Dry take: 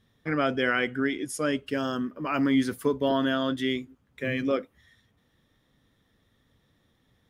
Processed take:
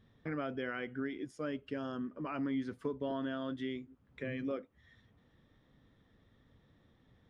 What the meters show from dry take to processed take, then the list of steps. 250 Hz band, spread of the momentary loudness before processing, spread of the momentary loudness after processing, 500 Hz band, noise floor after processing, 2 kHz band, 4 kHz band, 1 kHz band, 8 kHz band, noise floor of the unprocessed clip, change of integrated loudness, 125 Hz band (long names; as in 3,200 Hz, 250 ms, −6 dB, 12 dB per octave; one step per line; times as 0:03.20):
−11.0 dB, 7 LU, 5 LU, −11.5 dB, −70 dBFS, −14.5 dB, −17.0 dB, −13.0 dB, below −25 dB, −69 dBFS, −12.0 dB, −9.5 dB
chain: high-shelf EQ 4,800 Hz +10.5 dB
downward compressor 2 to 1, threshold −45 dBFS, peak gain reduction 14 dB
head-to-tape spacing loss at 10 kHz 31 dB
level +2 dB